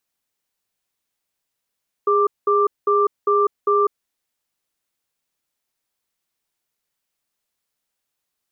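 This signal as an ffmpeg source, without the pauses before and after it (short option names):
-f lavfi -i "aevalsrc='0.15*(sin(2*PI*410*t)+sin(2*PI*1180*t))*clip(min(mod(t,0.4),0.2-mod(t,0.4))/0.005,0,1)':d=1.99:s=44100"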